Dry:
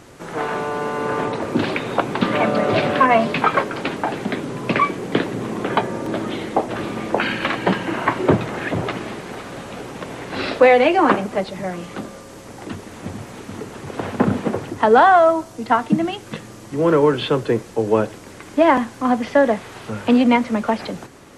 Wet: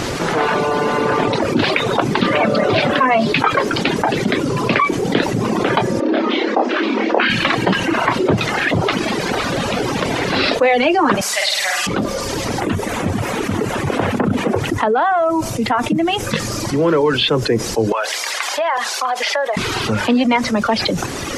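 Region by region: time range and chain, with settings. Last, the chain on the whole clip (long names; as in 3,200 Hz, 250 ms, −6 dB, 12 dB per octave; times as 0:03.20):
0:06.00–0:07.30: linear-phase brick-wall high-pass 220 Hz + high-frequency loss of the air 170 metres + double-tracking delay 28 ms −2 dB
0:11.21–0:11.87: high-pass filter 1,200 Hz + high-shelf EQ 4,500 Hz +10.5 dB + flutter between parallel walls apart 8.8 metres, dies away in 1.3 s
0:12.60–0:16.31: parametric band 4,600 Hz −8.5 dB 0.94 octaves + downward compressor 4 to 1, threshold −17 dBFS
0:17.92–0:19.57: high-pass filter 590 Hz 24 dB per octave + downward compressor 2.5 to 1, threshold −31 dBFS
whole clip: drawn EQ curve 1,500 Hz 0 dB, 5,000 Hz +5 dB, 8,300 Hz −3 dB; reverb reduction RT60 1.2 s; envelope flattener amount 70%; level −3.5 dB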